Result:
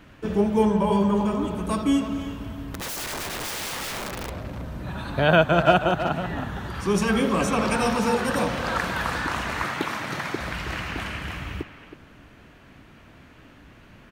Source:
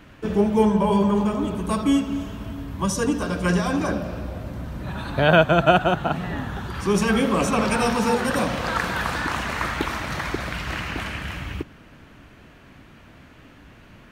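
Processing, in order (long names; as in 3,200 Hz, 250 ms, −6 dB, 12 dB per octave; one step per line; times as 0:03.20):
0:02.74–0:04.30: wrap-around overflow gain 25 dB
0:09.63–0:10.40: high-pass filter 110 Hz 24 dB per octave
far-end echo of a speakerphone 320 ms, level −9 dB
level −2 dB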